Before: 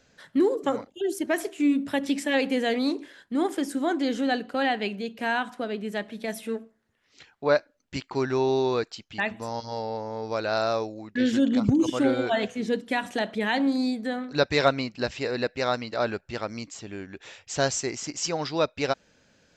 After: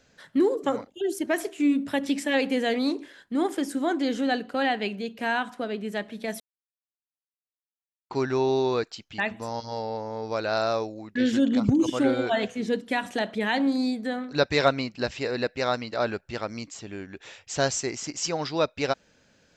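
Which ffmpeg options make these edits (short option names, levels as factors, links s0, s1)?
-filter_complex "[0:a]asplit=3[s0][s1][s2];[s0]atrim=end=6.4,asetpts=PTS-STARTPTS,afade=t=out:st=6.396:d=0.004:c=hsin[s3];[s1]atrim=start=6.4:end=8.1,asetpts=PTS-STARTPTS,volume=0[s4];[s2]atrim=start=8.1,asetpts=PTS-STARTPTS,afade=t=in:d=0.004:c=hsin[s5];[s3][s4][s5]concat=n=3:v=0:a=1"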